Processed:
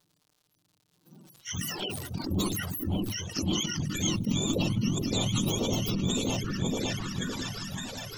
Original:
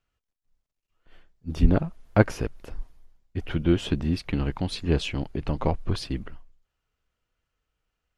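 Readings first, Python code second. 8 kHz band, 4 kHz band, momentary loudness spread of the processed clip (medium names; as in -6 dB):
+15.0 dB, +6.5 dB, 7 LU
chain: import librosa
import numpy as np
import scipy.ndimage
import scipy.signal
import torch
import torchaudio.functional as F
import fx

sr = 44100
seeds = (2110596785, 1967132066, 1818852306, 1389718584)

p1 = fx.octave_mirror(x, sr, pivot_hz=700.0)
p2 = fx.spec_gate(p1, sr, threshold_db=-25, keep='strong')
p3 = fx.dynamic_eq(p2, sr, hz=330.0, q=0.88, threshold_db=-46.0, ratio=4.0, max_db=7)
p4 = fx.schmitt(p3, sr, flips_db=-24.5)
p5 = p3 + (p4 * librosa.db_to_amplitude(-12.0))
p6 = fx.over_compress(p5, sr, threshold_db=-32.0, ratio=-0.5)
p7 = p6 + fx.echo_opening(p6, sr, ms=561, hz=400, octaves=2, feedback_pct=70, wet_db=0, dry=0)
p8 = fx.dmg_crackle(p7, sr, seeds[0], per_s=110.0, level_db=-48.0)
p9 = fx.graphic_eq_10(p8, sr, hz=(250, 2000, 4000), db=(4, -6, 4))
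p10 = fx.env_flanger(p9, sr, rest_ms=6.8, full_db=-26.5)
y = fx.sustainer(p10, sr, db_per_s=31.0)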